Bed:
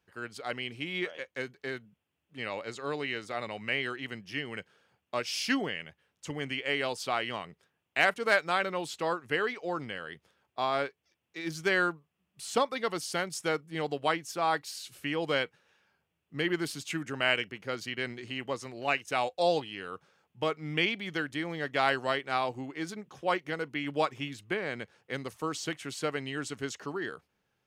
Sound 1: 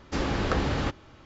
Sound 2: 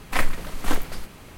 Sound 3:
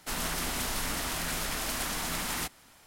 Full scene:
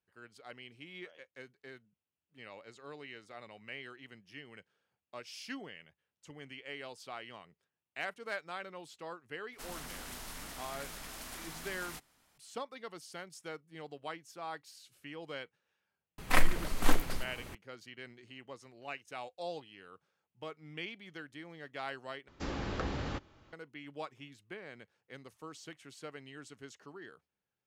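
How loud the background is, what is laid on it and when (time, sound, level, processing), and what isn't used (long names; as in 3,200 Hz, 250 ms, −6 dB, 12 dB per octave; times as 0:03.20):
bed −14 dB
0:09.52: mix in 3 −13 dB
0:16.18: mix in 2 −3 dB
0:22.28: overwrite with 1 −10 dB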